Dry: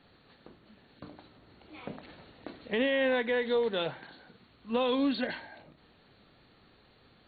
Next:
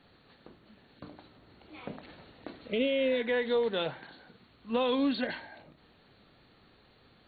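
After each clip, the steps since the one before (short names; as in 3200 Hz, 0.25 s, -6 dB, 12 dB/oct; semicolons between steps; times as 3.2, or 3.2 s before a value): spectral repair 2.67–3.19, 710–2000 Hz both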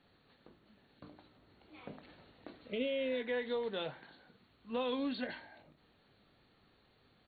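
doubler 20 ms -13.5 dB; gain -7.5 dB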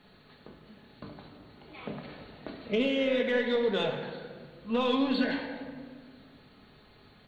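in parallel at -4 dB: soft clip -35.5 dBFS, distortion -13 dB; on the sum: reverb RT60 1.8 s, pre-delay 5 ms, DRR 3 dB; gain +5 dB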